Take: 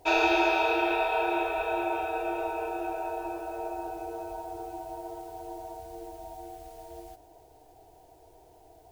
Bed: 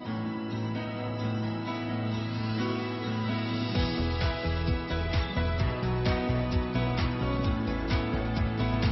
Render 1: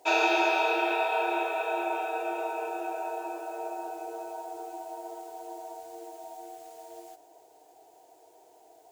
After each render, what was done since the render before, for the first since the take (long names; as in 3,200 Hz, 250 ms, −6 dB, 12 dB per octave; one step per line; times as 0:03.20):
high-pass filter 360 Hz 12 dB per octave
parametric band 7,200 Hz +5.5 dB 0.42 octaves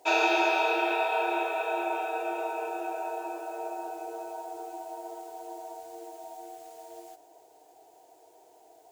no processing that can be heard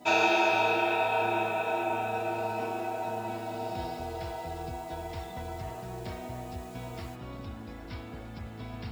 mix in bed −13 dB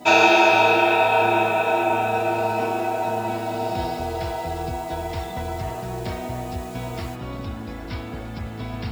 level +9.5 dB